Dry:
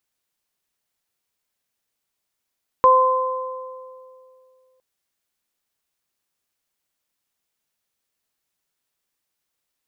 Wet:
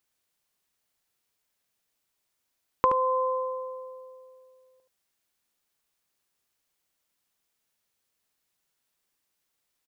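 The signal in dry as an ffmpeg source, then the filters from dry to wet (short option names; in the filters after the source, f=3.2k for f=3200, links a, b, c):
-f lavfi -i "aevalsrc='0.188*pow(10,-3*t/2.56)*sin(2*PI*516*t)+0.355*pow(10,-3*t/1.79)*sin(2*PI*1032*t)':d=1.96:s=44100"
-filter_complex "[0:a]acompressor=threshold=-20dB:ratio=6,asplit=2[a][b];[b]aecho=0:1:75:0.398[c];[a][c]amix=inputs=2:normalize=0"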